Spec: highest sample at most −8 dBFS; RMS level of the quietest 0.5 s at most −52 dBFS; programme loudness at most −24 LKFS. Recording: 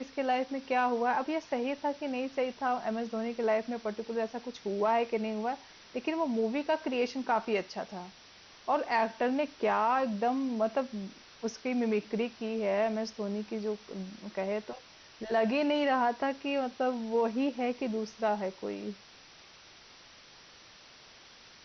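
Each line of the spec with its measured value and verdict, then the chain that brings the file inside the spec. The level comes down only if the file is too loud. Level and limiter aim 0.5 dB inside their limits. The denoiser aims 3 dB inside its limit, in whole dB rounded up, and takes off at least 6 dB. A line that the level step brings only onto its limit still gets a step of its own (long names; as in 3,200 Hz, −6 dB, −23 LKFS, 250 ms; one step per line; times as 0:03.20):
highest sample −17.0 dBFS: in spec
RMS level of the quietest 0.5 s −55 dBFS: in spec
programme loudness −32.0 LKFS: in spec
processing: no processing needed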